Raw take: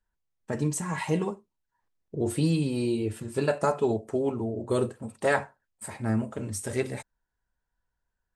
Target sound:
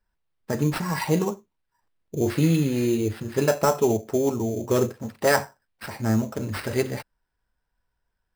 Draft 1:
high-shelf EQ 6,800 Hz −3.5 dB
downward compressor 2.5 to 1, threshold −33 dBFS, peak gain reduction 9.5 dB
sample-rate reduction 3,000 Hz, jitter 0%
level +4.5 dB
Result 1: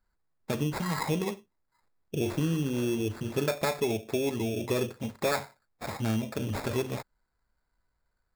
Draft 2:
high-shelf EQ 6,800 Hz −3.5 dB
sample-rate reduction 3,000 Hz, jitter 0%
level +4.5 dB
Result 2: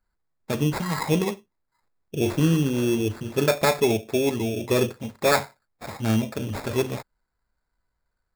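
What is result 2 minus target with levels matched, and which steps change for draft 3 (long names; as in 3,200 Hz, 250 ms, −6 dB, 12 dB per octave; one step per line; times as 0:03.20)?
sample-rate reduction: distortion +5 dB
change: sample-rate reduction 6,700 Hz, jitter 0%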